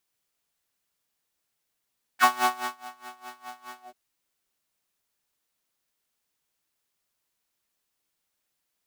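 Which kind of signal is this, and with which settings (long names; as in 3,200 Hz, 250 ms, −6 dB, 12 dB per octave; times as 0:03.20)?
subtractive patch with tremolo B3, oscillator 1 triangle, oscillator 2 saw, interval +7 semitones, detune 9 cents, oscillator 2 level −6 dB, sub −10 dB, noise −20 dB, filter highpass, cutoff 540 Hz, Q 5.3, filter envelope 2 octaves, filter decay 0.05 s, attack 46 ms, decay 0.54 s, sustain −22 dB, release 0.13 s, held 1.61 s, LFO 4.8 Hz, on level 21 dB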